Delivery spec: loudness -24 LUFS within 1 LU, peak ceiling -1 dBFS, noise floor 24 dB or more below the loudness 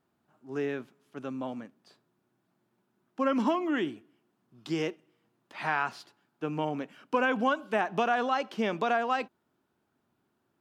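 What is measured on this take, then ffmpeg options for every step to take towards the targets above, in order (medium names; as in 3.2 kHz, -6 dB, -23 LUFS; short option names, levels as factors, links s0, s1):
loudness -30.5 LUFS; peak level -14.0 dBFS; loudness target -24.0 LUFS
-> -af "volume=2.11"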